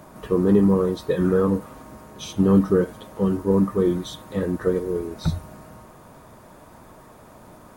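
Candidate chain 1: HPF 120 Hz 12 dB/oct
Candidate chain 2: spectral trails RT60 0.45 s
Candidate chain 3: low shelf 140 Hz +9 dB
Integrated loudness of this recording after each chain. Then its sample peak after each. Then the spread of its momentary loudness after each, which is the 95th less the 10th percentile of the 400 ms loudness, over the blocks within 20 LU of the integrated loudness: -22.5, -21.0, -19.5 LUFS; -6.5, -5.0, -3.5 dBFS; 12, 12, 12 LU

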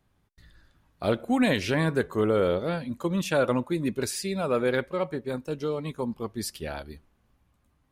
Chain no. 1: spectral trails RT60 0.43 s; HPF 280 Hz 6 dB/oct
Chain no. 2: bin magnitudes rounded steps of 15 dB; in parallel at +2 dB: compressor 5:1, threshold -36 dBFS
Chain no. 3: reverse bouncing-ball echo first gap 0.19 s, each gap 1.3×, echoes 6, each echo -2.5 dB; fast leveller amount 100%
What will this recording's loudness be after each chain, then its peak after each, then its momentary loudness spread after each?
-28.0, -25.5, -19.0 LUFS; -11.5, -10.0, -5.0 dBFS; 9, 8, 3 LU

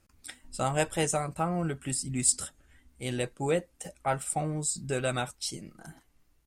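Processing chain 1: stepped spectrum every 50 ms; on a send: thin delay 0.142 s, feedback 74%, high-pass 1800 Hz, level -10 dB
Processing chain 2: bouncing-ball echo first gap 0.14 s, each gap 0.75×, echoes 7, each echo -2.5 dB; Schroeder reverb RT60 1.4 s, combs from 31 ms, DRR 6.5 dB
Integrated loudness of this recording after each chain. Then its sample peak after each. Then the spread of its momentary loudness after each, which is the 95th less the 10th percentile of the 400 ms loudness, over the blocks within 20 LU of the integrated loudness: -32.0, -26.5 LUFS; -14.0, -9.5 dBFS; 16, 11 LU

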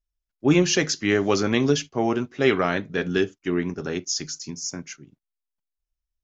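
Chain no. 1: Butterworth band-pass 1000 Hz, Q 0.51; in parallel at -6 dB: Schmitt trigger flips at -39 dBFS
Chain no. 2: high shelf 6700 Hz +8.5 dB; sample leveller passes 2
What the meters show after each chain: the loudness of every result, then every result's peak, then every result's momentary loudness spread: -26.0, -17.0 LUFS; -10.5, -5.0 dBFS; 16, 8 LU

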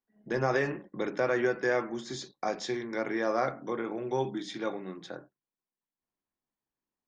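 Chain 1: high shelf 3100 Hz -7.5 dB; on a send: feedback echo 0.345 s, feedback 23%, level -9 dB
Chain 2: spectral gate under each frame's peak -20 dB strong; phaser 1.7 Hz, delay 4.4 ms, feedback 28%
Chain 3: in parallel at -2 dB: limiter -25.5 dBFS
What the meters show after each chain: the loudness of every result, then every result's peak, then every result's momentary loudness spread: -32.0, -32.0, -29.0 LUFS; -16.5, -15.0, -14.0 dBFS; 11, 12, 10 LU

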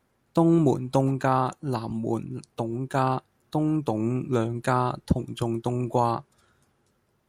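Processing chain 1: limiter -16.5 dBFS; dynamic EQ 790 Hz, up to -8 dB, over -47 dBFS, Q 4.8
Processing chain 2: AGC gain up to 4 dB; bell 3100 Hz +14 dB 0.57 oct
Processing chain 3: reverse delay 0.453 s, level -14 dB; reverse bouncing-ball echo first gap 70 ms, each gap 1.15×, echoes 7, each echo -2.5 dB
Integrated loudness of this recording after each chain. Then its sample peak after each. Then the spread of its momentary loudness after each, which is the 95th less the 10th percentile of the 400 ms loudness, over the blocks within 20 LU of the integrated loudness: -29.5, -22.5, -23.0 LUFS; -16.0, -3.5, -6.5 dBFS; 7, 8, 9 LU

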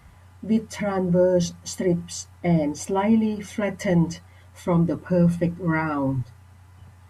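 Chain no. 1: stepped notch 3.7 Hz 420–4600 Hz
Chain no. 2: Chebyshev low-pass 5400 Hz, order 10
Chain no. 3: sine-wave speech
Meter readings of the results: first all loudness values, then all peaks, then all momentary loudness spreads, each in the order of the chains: -24.0, -24.5, -23.0 LUFS; -9.5, -10.0, -6.0 dBFS; 9, 10, 14 LU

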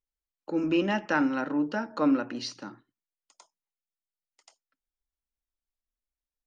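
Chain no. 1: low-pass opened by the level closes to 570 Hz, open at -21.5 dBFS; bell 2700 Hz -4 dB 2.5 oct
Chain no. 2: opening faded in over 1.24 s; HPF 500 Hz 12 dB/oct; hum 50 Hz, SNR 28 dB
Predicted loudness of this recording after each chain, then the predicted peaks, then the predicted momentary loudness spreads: -28.5, -33.5 LUFS; -15.0, -14.0 dBFS; 17, 16 LU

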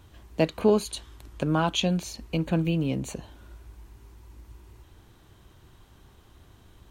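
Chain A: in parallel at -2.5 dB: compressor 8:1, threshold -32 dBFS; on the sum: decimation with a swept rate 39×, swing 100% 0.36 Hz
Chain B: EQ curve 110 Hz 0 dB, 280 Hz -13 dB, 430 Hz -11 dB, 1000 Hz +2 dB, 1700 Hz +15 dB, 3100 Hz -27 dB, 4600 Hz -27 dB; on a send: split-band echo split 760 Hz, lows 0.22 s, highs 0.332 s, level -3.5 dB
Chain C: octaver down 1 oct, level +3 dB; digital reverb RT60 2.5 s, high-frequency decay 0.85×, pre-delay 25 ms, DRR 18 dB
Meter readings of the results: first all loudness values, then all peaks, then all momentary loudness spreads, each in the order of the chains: -25.5, -29.5, -24.5 LUFS; -9.5, -10.0, -7.0 dBFS; 22, 20, 17 LU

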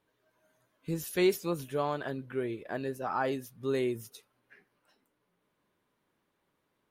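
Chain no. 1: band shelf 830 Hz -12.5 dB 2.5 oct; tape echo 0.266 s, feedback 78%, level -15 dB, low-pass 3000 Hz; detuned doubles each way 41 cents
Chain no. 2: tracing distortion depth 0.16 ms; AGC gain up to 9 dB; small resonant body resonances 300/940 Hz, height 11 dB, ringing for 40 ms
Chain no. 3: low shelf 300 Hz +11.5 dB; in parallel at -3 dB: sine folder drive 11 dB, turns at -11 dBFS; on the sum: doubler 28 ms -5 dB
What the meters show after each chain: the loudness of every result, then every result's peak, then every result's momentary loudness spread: -42.5, -20.0, -18.0 LUFS; -22.5, -3.5, -7.0 dBFS; 19, 9, 6 LU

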